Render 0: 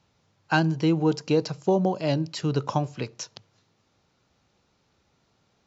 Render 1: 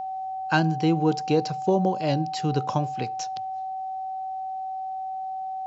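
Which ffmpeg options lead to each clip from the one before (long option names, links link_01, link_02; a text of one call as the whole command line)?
ffmpeg -i in.wav -af "aeval=exprs='val(0)+0.0355*sin(2*PI*760*n/s)':channel_layout=same" out.wav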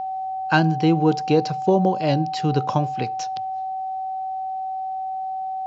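ffmpeg -i in.wav -af "lowpass=5500,volume=4dB" out.wav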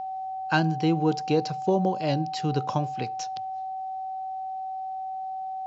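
ffmpeg -i in.wav -af "highshelf=frequency=6000:gain=6.5,volume=-5.5dB" out.wav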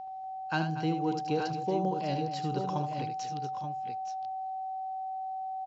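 ffmpeg -i in.wav -af "aecho=1:1:76|238|858|879:0.398|0.224|0.178|0.398,volume=-8dB" out.wav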